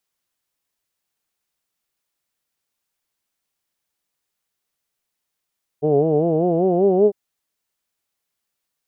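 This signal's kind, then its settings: formant vowel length 1.30 s, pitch 143 Hz, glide +6 st, vibrato 5.1 Hz, vibrato depth 1.1 st, F1 420 Hz, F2 710 Hz, F3 2900 Hz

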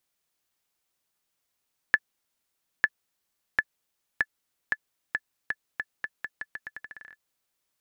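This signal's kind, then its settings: bouncing ball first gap 0.90 s, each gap 0.83, 1730 Hz, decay 47 ms -6.5 dBFS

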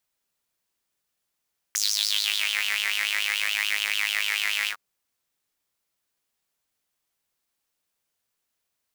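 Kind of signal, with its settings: synth patch with filter wobble G#2, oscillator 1 saw, noise -20 dB, filter highpass, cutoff 1400 Hz, Q 5.5, filter envelope 2 oct, filter decay 0.82 s, attack 1.1 ms, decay 0.81 s, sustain -5 dB, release 0.08 s, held 2.93 s, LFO 6.9 Hz, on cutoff 0.3 oct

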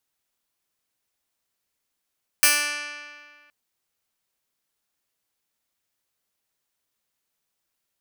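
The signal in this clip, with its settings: plucked string D4, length 1.07 s, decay 1.88 s, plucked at 0.08, bright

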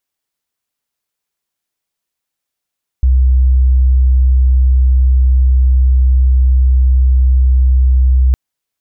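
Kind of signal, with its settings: tone sine 64.1 Hz -6 dBFS 5.31 s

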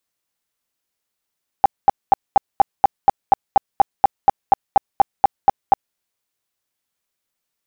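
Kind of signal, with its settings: tone bursts 796 Hz, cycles 13, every 0.24 s, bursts 18, -5.5 dBFS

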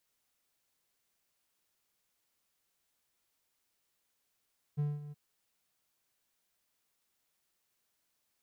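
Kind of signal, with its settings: ADSR triangle 147 Hz, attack 25 ms, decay 0.203 s, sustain -14.5 dB, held 0.35 s, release 25 ms -26 dBFS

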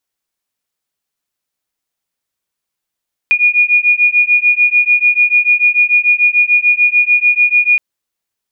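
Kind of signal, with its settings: beating tones 2440 Hz, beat 6.8 Hz, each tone -11 dBFS 4.47 s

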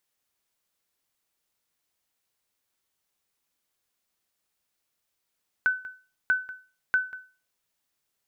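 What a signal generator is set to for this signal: sonar ping 1510 Hz, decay 0.35 s, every 0.64 s, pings 3, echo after 0.19 s, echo -17.5 dB -15.5 dBFS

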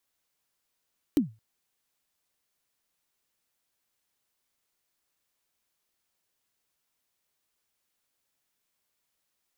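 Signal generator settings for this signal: kick drum length 0.22 s, from 320 Hz, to 110 Hz, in 0.126 s, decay 0.27 s, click on, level -15 dB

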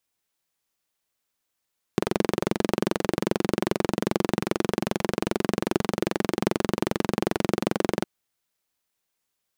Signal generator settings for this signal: single-cylinder engine model, steady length 6.06 s, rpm 2700, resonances 210/340 Hz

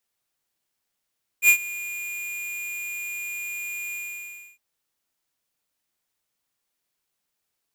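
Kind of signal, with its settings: ADSR square 2430 Hz, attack 69 ms, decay 82 ms, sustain -19.5 dB, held 2.51 s, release 0.65 s -13 dBFS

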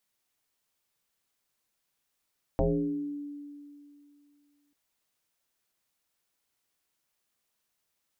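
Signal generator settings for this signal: FM tone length 2.14 s, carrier 289 Hz, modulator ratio 0.43, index 3.7, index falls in 0.94 s exponential, decay 2.57 s, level -21 dB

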